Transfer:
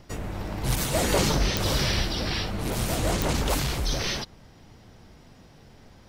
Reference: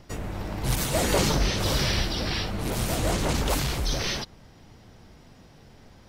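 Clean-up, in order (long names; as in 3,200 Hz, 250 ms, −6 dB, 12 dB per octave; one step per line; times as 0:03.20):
click removal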